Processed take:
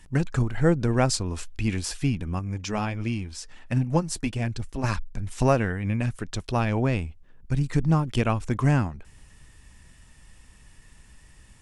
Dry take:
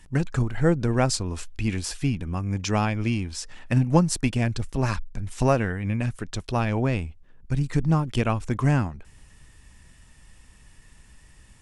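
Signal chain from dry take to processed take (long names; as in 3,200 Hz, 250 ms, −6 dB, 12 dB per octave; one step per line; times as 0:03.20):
0:02.39–0:04.84: flanger 1.4 Hz, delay 0 ms, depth 4.9 ms, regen −58%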